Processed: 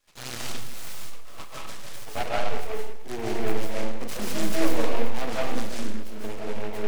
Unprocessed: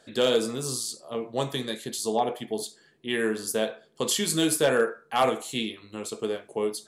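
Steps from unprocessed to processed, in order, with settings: HPF 98 Hz 24 dB/oct; notch 2000 Hz, Q 5.9; in parallel at -9 dB: soft clip -23 dBFS, distortion -10 dB; on the sum: high-pass sweep 2300 Hz -> 190 Hz, 0.61–3.74; envelope flanger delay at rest 9 ms, full sweep at -21.5 dBFS; half-wave rectifier; on a send: thin delay 0.53 s, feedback 56%, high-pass 5300 Hz, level -13 dB; on the sum: digital reverb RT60 1 s, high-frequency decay 0.65×, pre-delay 0.11 s, DRR -4.5 dB; noise-modulated delay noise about 1400 Hz, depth 0.099 ms; gain -7 dB

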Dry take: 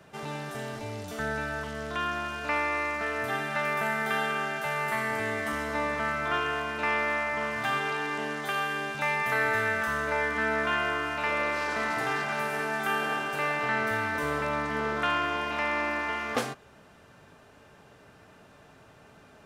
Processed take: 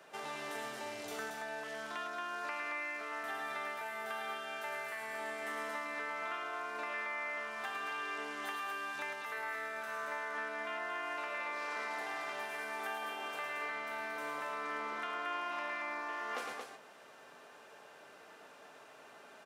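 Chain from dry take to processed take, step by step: HPF 420 Hz 12 dB/oct; compressor, threshold -38 dBFS, peak gain reduction 14 dB; loudspeakers at several distances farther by 37 m -5 dB, 78 m -5 dB; gain -1.5 dB

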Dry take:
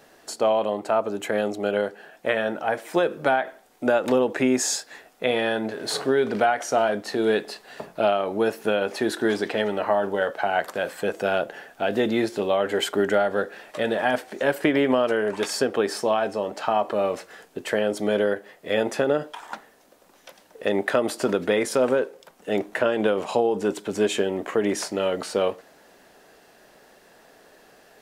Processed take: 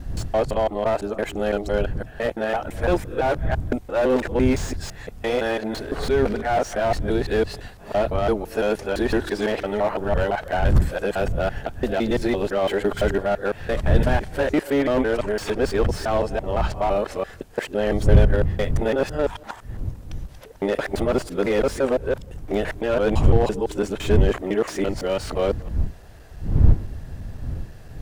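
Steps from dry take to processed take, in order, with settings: local time reversal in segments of 0.169 s; wind noise 81 Hz -26 dBFS; slew limiter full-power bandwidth 92 Hz; gain +1 dB

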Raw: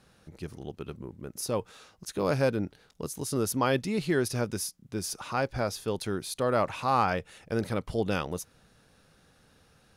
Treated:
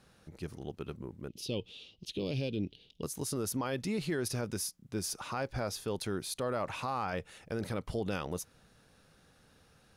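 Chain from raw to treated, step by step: 1.28–3.03 EQ curve 380 Hz 0 dB, 1500 Hz -25 dB, 3000 Hz +13 dB, 7500 Hz -12 dB; limiter -23 dBFS, peak gain reduction 9.5 dB; gain -2 dB

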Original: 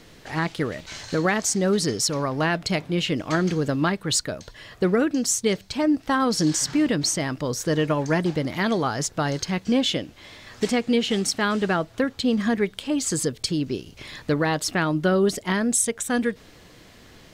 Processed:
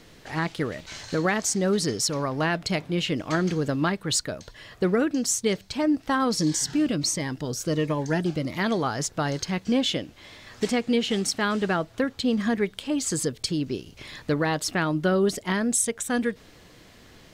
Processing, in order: 6.35–8.57 cascading phaser falling 1.4 Hz; gain -2 dB

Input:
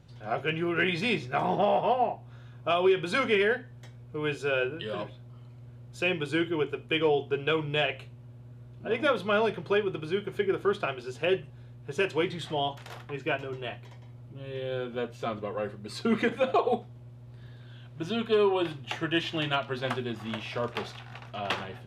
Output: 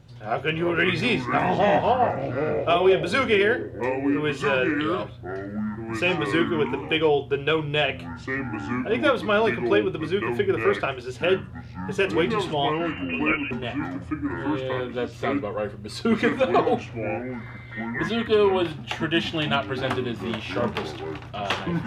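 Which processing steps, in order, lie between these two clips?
12.72–13.51 inverted band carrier 2900 Hz; echoes that change speed 0.241 s, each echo -5 st, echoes 2, each echo -6 dB; gain +4.5 dB

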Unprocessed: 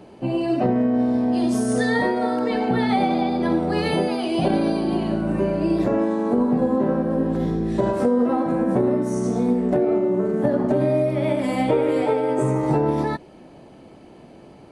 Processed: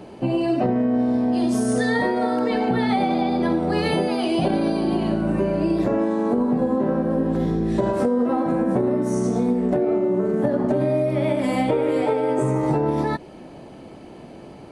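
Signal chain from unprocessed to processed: compressor 2.5:1, threshold -24 dBFS, peak gain reduction 6.5 dB; gain +4.5 dB

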